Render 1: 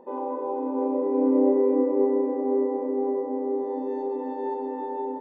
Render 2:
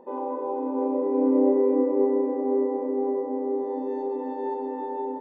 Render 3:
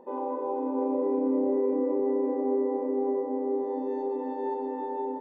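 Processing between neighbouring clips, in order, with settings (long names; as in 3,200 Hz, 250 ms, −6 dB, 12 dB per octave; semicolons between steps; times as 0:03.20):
no processing that can be heard
brickwall limiter −17.5 dBFS, peak gain reduction 7 dB; level −1.5 dB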